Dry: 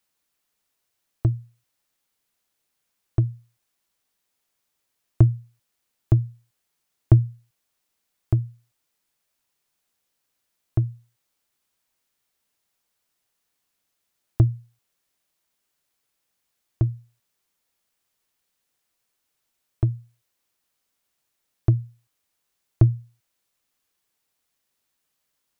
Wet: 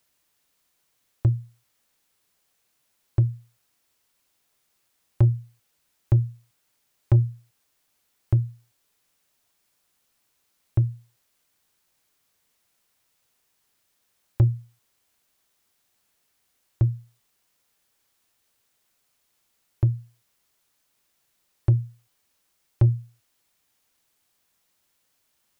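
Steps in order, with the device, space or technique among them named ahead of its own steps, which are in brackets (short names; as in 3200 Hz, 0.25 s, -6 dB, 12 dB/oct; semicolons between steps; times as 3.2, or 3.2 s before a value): open-reel tape (soft clip -14.5 dBFS, distortion -10 dB; bell 95 Hz +5 dB; white noise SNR 43 dB)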